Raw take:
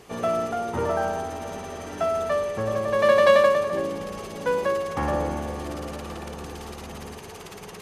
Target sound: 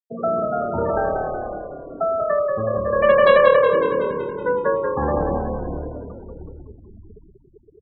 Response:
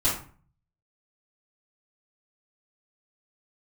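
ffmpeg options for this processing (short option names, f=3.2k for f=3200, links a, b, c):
-filter_complex "[0:a]asplit=2[a][b];[b]aecho=0:1:625:0.112[c];[a][c]amix=inputs=2:normalize=0,afftfilt=real='re*gte(hypot(re,im),0.0891)':imag='im*gte(hypot(re,im),0.0891)':win_size=1024:overlap=0.75,asplit=2[d][e];[e]asplit=8[f][g][h][i][j][k][l][m];[f]adelay=186,afreqshift=-37,volume=-5dB[n];[g]adelay=372,afreqshift=-74,volume=-9.4dB[o];[h]adelay=558,afreqshift=-111,volume=-13.9dB[p];[i]adelay=744,afreqshift=-148,volume=-18.3dB[q];[j]adelay=930,afreqshift=-185,volume=-22.7dB[r];[k]adelay=1116,afreqshift=-222,volume=-27.2dB[s];[l]adelay=1302,afreqshift=-259,volume=-31.6dB[t];[m]adelay=1488,afreqshift=-296,volume=-36.1dB[u];[n][o][p][q][r][s][t][u]amix=inputs=8:normalize=0[v];[d][v]amix=inputs=2:normalize=0,volume=3dB"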